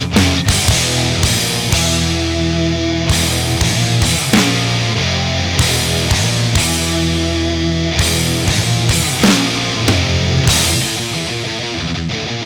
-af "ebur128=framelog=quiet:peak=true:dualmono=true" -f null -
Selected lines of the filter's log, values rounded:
Integrated loudness:
  I:         -11.2 LUFS
  Threshold: -21.2 LUFS
Loudness range:
  LRA:         1.1 LU
  Threshold: -31.1 LUFS
  LRA low:   -11.5 LUFS
  LRA high:  -10.5 LUFS
True peak:
  Peak:       -3.4 dBFS